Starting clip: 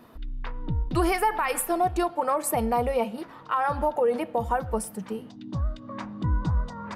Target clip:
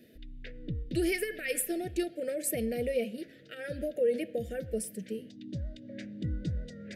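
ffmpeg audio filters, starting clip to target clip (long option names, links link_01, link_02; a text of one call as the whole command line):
ffmpeg -i in.wav -af "asuperstop=centerf=1000:order=8:qfactor=0.89,lowshelf=frequency=96:gain=-10.5,volume=-3dB" out.wav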